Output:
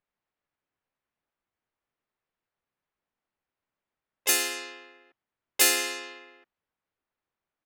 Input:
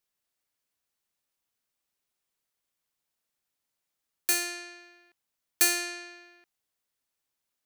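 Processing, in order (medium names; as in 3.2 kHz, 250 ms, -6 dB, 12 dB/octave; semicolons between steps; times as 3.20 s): harmony voices -5 st -8 dB, +3 st -1 dB, +7 st -2 dB; level-controlled noise filter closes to 1.9 kHz, open at -24.5 dBFS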